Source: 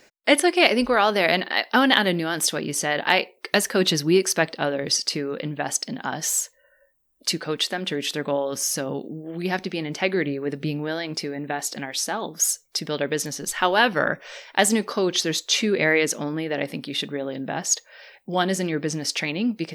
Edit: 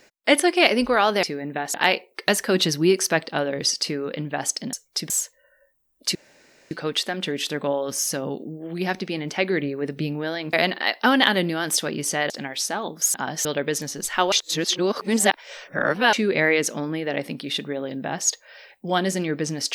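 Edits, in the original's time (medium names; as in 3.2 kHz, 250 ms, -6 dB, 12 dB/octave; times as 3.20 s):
1.23–3.00 s: swap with 11.17–11.68 s
5.99–6.30 s: swap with 12.52–12.89 s
7.35 s: insert room tone 0.56 s
13.76–15.57 s: reverse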